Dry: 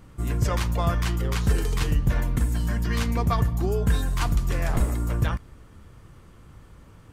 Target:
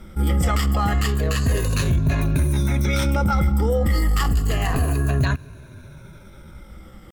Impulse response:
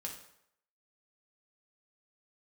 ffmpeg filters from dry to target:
-af "afftfilt=real='re*pow(10,13/40*sin(2*PI*(1.5*log(max(b,1)*sr/1024/100)/log(2)-(-0.3)*(pts-256)/sr)))':imag='im*pow(10,13/40*sin(2*PI*(1.5*log(max(b,1)*sr/1024/100)/log(2)-(-0.3)*(pts-256)/sr)))':win_size=1024:overlap=0.75,alimiter=limit=-16.5dB:level=0:latency=1:release=14,asetrate=52444,aresample=44100,atempo=0.840896,volume=4.5dB"

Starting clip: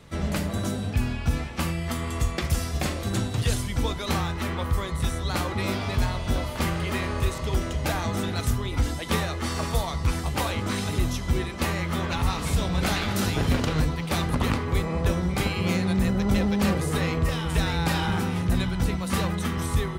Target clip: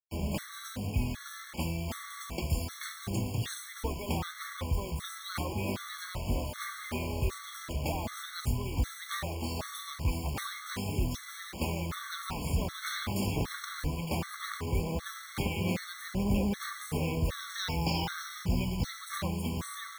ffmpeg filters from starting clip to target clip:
ffmpeg -i in.wav -filter_complex "[0:a]asettb=1/sr,asplit=3[link_01][link_02][link_03];[link_01]atrim=end=17.384[link_04];[link_02]atrim=start=17.38:end=19.01,asetpts=PTS-STARTPTS,afade=type=in:duration=0.004:curve=qsin,afade=type=out:start_time=1.626:duration=0.004:curve=qsin,lowpass=frequency=5400:width_type=q:width=2.8[link_05];[link_03]atrim=start=19.006[link_06];[link_04][link_05]acrossfade=duration=0.004:curve1=hsin:curve2=qsin[link_07];[link_07][link_06]acrossfade=duration=0.004:curve1=qsin:curve2=hsin,acrusher=bits=5:mix=0:aa=0.000001,afftfilt=real='re*gt(sin(2*PI*1.3*pts/sr)*(1-2*mod(floor(b*sr/1024/1100),2)),0)':imag='im*gt(sin(2*PI*1.3*pts/sr)*(1-2*mod(floor(b*sr/1024/1100),2)),0)':win_size=1024:overlap=0.75,volume=-5.5dB" out.wav

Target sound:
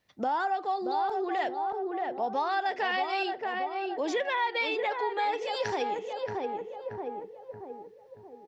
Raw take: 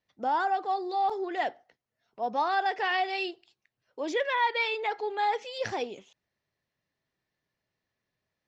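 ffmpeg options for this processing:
ffmpeg -i in.wav -filter_complex "[0:a]asplit=2[link_01][link_02];[link_02]adelay=628,lowpass=frequency=1000:poles=1,volume=-4.5dB,asplit=2[link_03][link_04];[link_04]adelay=628,lowpass=frequency=1000:poles=1,volume=0.52,asplit=2[link_05][link_06];[link_06]adelay=628,lowpass=frequency=1000:poles=1,volume=0.52,asplit=2[link_07][link_08];[link_08]adelay=628,lowpass=frequency=1000:poles=1,volume=0.52,asplit=2[link_09][link_10];[link_10]adelay=628,lowpass=frequency=1000:poles=1,volume=0.52,asplit=2[link_11][link_12];[link_12]adelay=628,lowpass=frequency=1000:poles=1,volume=0.52,asplit=2[link_13][link_14];[link_14]adelay=628,lowpass=frequency=1000:poles=1,volume=0.52[link_15];[link_01][link_03][link_05][link_07][link_09][link_11][link_13][link_15]amix=inputs=8:normalize=0,acompressor=threshold=-40dB:ratio=2.5,volume=8.5dB" out.wav

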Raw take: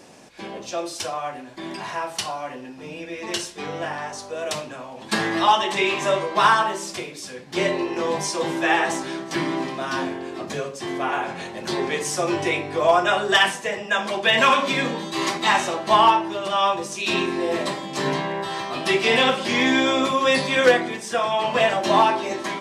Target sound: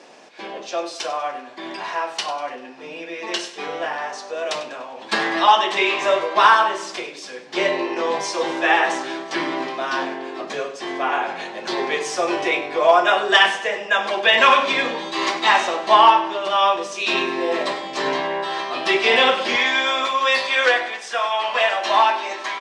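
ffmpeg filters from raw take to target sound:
ffmpeg -i in.wav -af "asetnsamples=nb_out_samples=441:pad=0,asendcmd='19.56 highpass f 790',highpass=380,lowpass=5100,aecho=1:1:98|196|294|392:0.188|0.0829|0.0365|0.016,volume=3.5dB" out.wav

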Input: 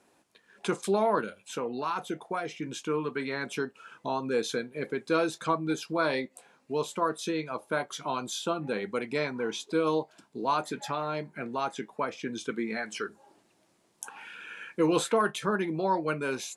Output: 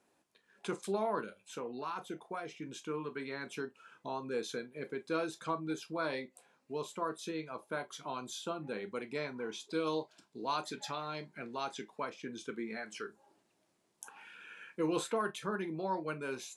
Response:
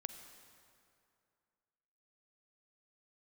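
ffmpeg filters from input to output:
-filter_complex "[0:a]asplit=3[link_01][link_02][link_03];[link_01]afade=type=out:start_time=9.69:duration=0.02[link_04];[link_02]adynamicequalizer=threshold=0.00251:dfrequency=4500:dqfactor=0.75:tfrequency=4500:tqfactor=0.75:attack=5:release=100:ratio=0.375:range=4:mode=boostabove:tftype=bell,afade=type=in:start_time=9.69:duration=0.02,afade=type=out:start_time=12.09:duration=0.02[link_05];[link_03]afade=type=in:start_time=12.09:duration=0.02[link_06];[link_04][link_05][link_06]amix=inputs=3:normalize=0[link_07];[1:a]atrim=start_sample=2205,atrim=end_sample=3969,asetrate=79380,aresample=44100[link_08];[link_07][link_08]afir=irnorm=-1:irlink=0"

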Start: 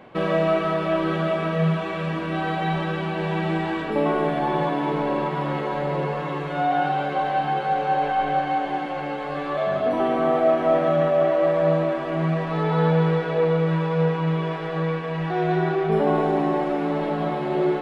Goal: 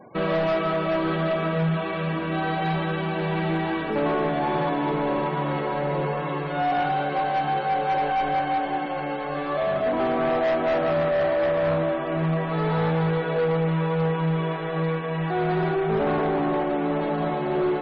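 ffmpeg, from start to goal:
ffmpeg -i in.wav -af "volume=19.5dB,asoftclip=hard,volume=-19.5dB,afftfilt=real='re*gte(hypot(re,im),0.00631)':imag='im*gte(hypot(re,im),0.00631)':win_size=1024:overlap=0.75" out.wav

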